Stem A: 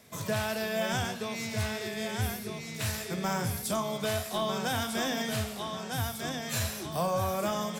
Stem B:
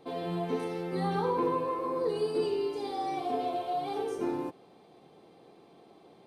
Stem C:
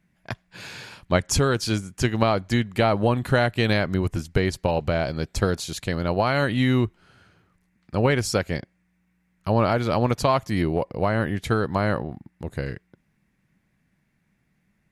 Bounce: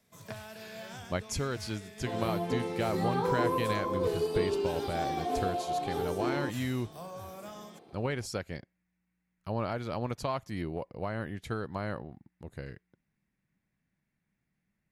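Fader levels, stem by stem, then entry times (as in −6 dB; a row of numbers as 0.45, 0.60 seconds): −14.5, −0.5, −12.5 decibels; 0.00, 2.00, 0.00 seconds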